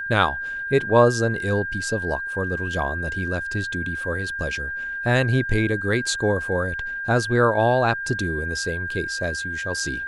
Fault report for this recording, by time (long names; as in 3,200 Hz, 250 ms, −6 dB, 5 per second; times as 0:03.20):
whistle 1,600 Hz −27 dBFS